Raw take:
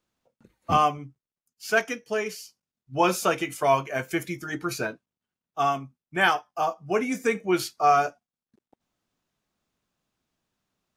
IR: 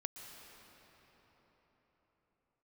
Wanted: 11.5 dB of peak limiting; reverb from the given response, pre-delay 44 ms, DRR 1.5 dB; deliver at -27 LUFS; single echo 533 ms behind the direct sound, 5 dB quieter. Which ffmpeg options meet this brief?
-filter_complex "[0:a]alimiter=limit=0.0944:level=0:latency=1,aecho=1:1:533:0.562,asplit=2[s0][s1];[1:a]atrim=start_sample=2205,adelay=44[s2];[s1][s2]afir=irnorm=-1:irlink=0,volume=1.06[s3];[s0][s3]amix=inputs=2:normalize=0,volume=1.26"

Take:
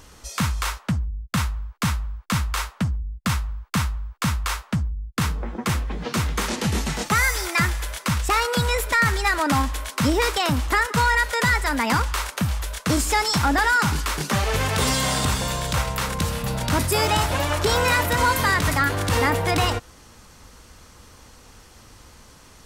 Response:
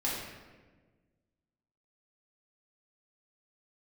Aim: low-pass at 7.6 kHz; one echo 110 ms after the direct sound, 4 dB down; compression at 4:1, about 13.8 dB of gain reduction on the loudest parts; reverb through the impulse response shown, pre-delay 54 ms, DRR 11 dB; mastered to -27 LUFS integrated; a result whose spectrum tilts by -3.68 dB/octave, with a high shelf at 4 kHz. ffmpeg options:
-filter_complex "[0:a]lowpass=7600,highshelf=f=4000:g=4.5,acompressor=threshold=0.0224:ratio=4,aecho=1:1:110:0.631,asplit=2[s0][s1];[1:a]atrim=start_sample=2205,adelay=54[s2];[s1][s2]afir=irnorm=-1:irlink=0,volume=0.133[s3];[s0][s3]amix=inputs=2:normalize=0,volume=1.78"

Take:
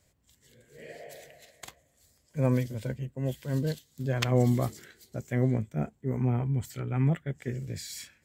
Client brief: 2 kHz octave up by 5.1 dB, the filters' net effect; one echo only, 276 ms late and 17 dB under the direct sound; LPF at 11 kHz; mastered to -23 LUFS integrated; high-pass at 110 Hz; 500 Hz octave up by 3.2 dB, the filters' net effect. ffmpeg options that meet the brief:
-af "highpass=110,lowpass=11000,equalizer=f=500:t=o:g=3.5,equalizer=f=2000:t=o:g=6,aecho=1:1:276:0.141,volume=2.24"

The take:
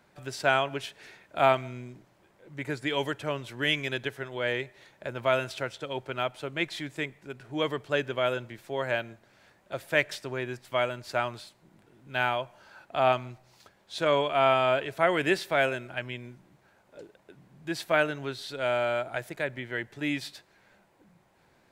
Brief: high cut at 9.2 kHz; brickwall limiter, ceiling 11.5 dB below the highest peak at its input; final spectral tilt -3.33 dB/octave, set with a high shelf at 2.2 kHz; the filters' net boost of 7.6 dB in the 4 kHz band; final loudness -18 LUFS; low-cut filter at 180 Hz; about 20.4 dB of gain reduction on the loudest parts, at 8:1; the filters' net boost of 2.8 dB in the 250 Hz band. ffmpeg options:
-af "highpass=180,lowpass=9200,equalizer=f=250:t=o:g=4.5,highshelf=f=2200:g=3.5,equalizer=f=4000:t=o:g=7,acompressor=threshold=0.0126:ratio=8,volume=20,alimiter=limit=0.531:level=0:latency=1"

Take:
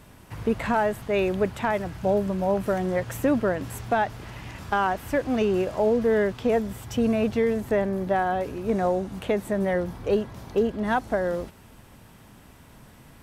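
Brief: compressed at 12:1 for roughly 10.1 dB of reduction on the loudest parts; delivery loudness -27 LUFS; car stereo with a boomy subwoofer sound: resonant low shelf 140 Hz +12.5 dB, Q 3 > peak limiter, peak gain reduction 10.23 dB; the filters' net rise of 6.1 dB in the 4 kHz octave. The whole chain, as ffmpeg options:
-af "equalizer=f=4000:t=o:g=8.5,acompressor=threshold=0.0398:ratio=12,lowshelf=f=140:t=q:w=3:g=12.5,volume=1.88,alimiter=limit=0.141:level=0:latency=1"

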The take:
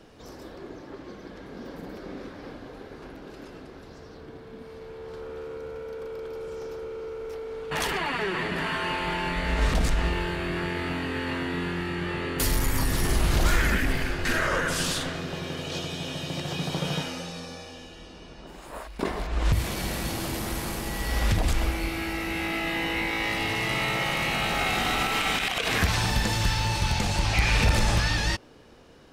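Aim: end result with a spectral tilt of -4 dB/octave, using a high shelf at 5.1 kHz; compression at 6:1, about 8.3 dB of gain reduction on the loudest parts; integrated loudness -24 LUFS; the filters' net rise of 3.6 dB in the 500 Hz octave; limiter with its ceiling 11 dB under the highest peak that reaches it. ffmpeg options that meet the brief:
-af "equalizer=f=500:t=o:g=4.5,highshelf=f=5100:g=4,acompressor=threshold=0.0501:ratio=6,volume=3.55,alimiter=limit=0.188:level=0:latency=1"

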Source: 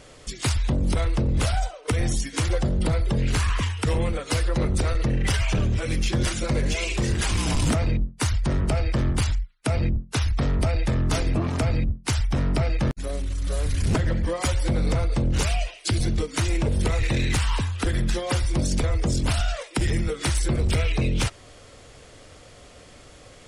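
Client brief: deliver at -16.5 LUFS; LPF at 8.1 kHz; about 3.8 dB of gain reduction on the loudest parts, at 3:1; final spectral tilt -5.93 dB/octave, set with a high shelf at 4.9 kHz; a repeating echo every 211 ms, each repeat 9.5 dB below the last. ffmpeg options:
-af "lowpass=8100,highshelf=f=4900:g=-6.5,acompressor=threshold=0.0631:ratio=3,aecho=1:1:211|422|633|844:0.335|0.111|0.0365|0.012,volume=3.98"

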